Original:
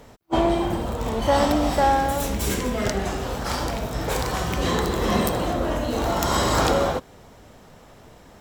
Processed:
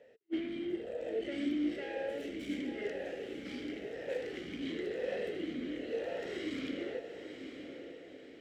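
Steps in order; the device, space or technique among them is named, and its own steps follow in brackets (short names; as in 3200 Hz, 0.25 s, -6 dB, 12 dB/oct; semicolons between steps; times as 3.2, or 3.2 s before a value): talk box (tube stage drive 22 dB, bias 0.5; vowel sweep e-i 0.98 Hz); 0.86–1.49 thirty-one-band EQ 630 Hz +7 dB, 1000 Hz -6 dB, 8000 Hz +6 dB; diffused feedback echo 0.927 s, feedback 45%, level -8 dB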